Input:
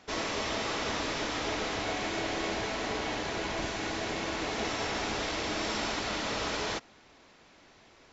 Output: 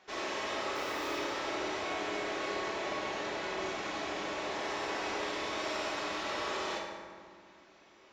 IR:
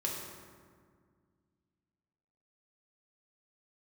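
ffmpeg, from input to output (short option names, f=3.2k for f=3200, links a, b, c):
-filter_complex "[0:a]asettb=1/sr,asplit=3[a][b][c];[a]atrim=end=0.754[d];[b]atrim=start=0.75:end=1.17,asetpts=PTS-STARTPTS,afade=t=in:d=0.004:c=qsin,afade=t=out:st=0.416:d=0.004:c=qsin,acrusher=bits=3:mode=log:mix=0:aa=0.000001[e];[c]atrim=start=1.166[f];[d][e]acrossfade=d=0.004:c1=hsin:c2=qsin[g];[g][f]acrossfade=d=0.004:c1=qsin:c2=hsin,bass=f=250:g=-14,treble=f=4k:g=-5,asoftclip=type=tanh:threshold=-27dB[h];[1:a]atrim=start_sample=2205[i];[h][i]afir=irnorm=-1:irlink=0,volume=-4dB"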